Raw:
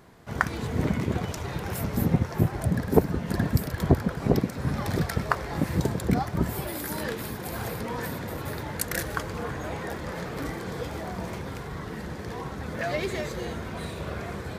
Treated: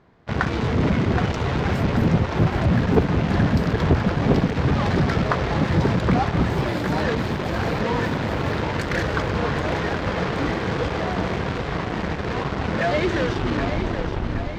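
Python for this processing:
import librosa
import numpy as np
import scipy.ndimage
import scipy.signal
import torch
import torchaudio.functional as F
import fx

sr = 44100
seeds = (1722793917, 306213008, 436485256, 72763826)

p1 = fx.tape_stop_end(x, sr, length_s=1.63)
p2 = fx.fuzz(p1, sr, gain_db=42.0, gate_db=-34.0)
p3 = p1 + F.gain(torch.from_numpy(p2), -4.0).numpy()
p4 = fx.air_absorb(p3, sr, metres=180.0)
p5 = fx.echo_feedback(p4, sr, ms=772, feedback_pct=56, wet_db=-8.5)
y = F.gain(torch.from_numpy(p5), -2.5).numpy()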